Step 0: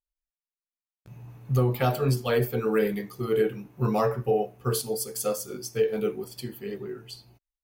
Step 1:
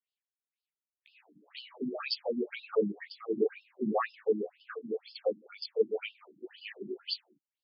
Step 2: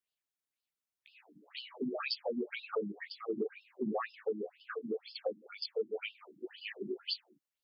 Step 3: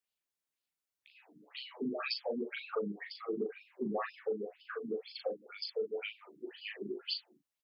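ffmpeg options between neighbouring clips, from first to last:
-af "highshelf=f=1600:t=q:w=1.5:g=7.5,afftfilt=real='re*between(b*sr/1024,240*pow(3800/240,0.5+0.5*sin(2*PI*2*pts/sr))/1.41,240*pow(3800/240,0.5+0.5*sin(2*PI*2*pts/sr))*1.41)':imag='im*between(b*sr/1024,240*pow(3800/240,0.5+0.5*sin(2*PI*2*pts/sr))/1.41,240*pow(3800/240,0.5+0.5*sin(2*PI*2*pts/sr))*1.41)':win_size=1024:overlap=0.75"
-af "acompressor=threshold=0.0224:ratio=6,volume=1.12"
-filter_complex "[0:a]asplit=2[s0][s1];[s1]adelay=39,volume=0.501[s2];[s0][s2]amix=inputs=2:normalize=0,volume=0.891"

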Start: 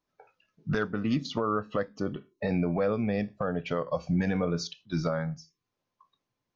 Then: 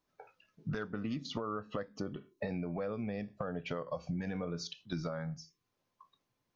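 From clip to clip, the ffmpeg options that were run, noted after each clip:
-af "acompressor=threshold=0.0141:ratio=5,volume=1.19"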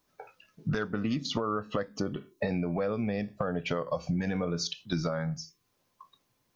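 -af "highshelf=f=5600:g=6.5,volume=2.24"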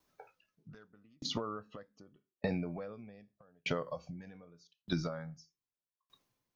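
-af "aeval=exprs='val(0)*pow(10,-38*if(lt(mod(0.82*n/s,1),2*abs(0.82)/1000),1-mod(0.82*n/s,1)/(2*abs(0.82)/1000),(mod(0.82*n/s,1)-2*abs(0.82)/1000)/(1-2*abs(0.82)/1000))/20)':c=same,volume=0.891"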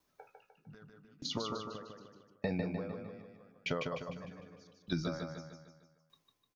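-af "aecho=1:1:151|302|453|604|755|906:0.596|0.286|0.137|0.0659|0.0316|0.0152,volume=0.891"

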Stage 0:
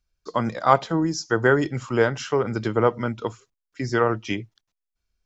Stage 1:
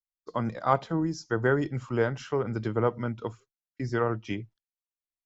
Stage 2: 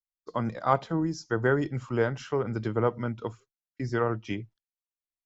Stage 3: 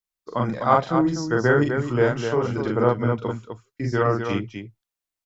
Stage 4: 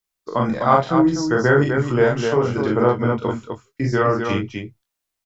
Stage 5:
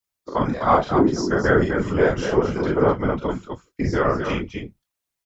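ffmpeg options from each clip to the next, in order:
-af "highshelf=f=3600:g=-6.5,agate=range=0.0224:threshold=0.01:ratio=3:detection=peak,lowshelf=f=180:g=6,volume=0.447"
-af anull
-af "aecho=1:1:40.82|253.6:0.891|0.501,volume=1.58"
-filter_complex "[0:a]asplit=2[s0][s1];[s1]adelay=22,volume=0.447[s2];[s0][s2]amix=inputs=2:normalize=0,asplit=2[s3][s4];[s4]acompressor=threshold=0.0501:ratio=6,volume=1[s5];[s3][s5]amix=inputs=2:normalize=0"
-af "afftfilt=real='hypot(re,im)*cos(2*PI*random(0))':imag='hypot(re,im)*sin(2*PI*random(1))':win_size=512:overlap=0.75,volume=1.58"

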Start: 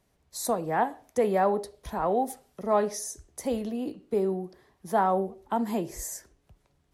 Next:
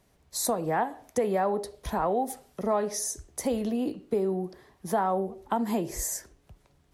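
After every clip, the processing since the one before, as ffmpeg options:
-af "acompressor=threshold=0.0316:ratio=3,volume=1.78"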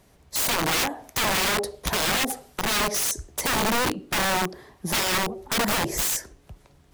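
-af "aeval=exprs='(mod(21.1*val(0)+1,2)-1)/21.1':c=same,volume=2.51"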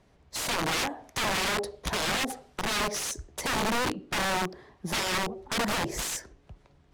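-af "adynamicsmooth=sensitivity=7.5:basefreq=5600,volume=0.631"

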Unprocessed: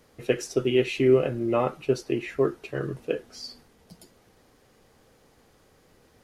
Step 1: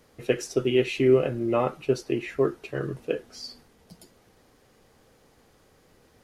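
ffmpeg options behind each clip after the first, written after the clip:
-af anull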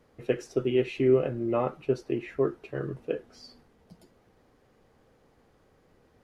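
-af "highshelf=f=3200:g=-12,volume=0.75"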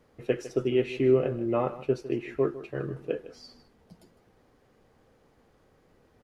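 -af "aecho=1:1:155:0.168"

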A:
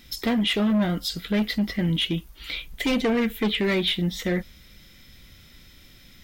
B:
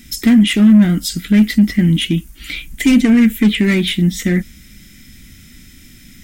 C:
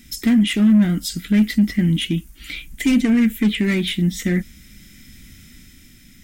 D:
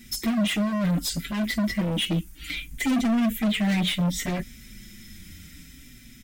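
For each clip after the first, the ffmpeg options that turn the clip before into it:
-af "equalizer=f=250:t=o:w=1:g=9,equalizer=f=500:t=o:w=1:g=-11,equalizer=f=1000:t=o:w=1:g=-9,equalizer=f=2000:t=o:w=1:g=3,equalizer=f=4000:t=o:w=1:g=-8,equalizer=f=8000:t=o:w=1:g=9,volume=2.66"
-af "dynaudnorm=f=160:g=9:m=1.41,volume=0.531"
-filter_complex "[0:a]volume=13.3,asoftclip=hard,volume=0.075,asplit=2[s0][s1];[s1]adelay=5.6,afreqshift=-0.64[s2];[s0][s2]amix=inputs=2:normalize=1,volume=1.33"

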